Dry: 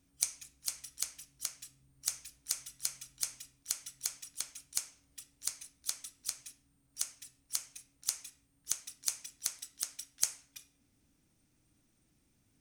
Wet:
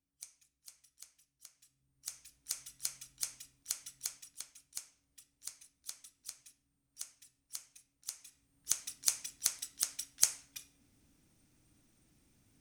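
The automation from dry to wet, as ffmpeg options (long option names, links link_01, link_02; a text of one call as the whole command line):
ffmpeg -i in.wav -af "volume=9.5dB,afade=type=in:start_time=1.54:duration=0.56:silence=0.354813,afade=type=in:start_time=2.1:duration=0.62:silence=0.473151,afade=type=out:start_time=3.96:duration=0.53:silence=0.473151,afade=type=in:start_time=8.19:duration=0.67:silence=0.251189" out.wav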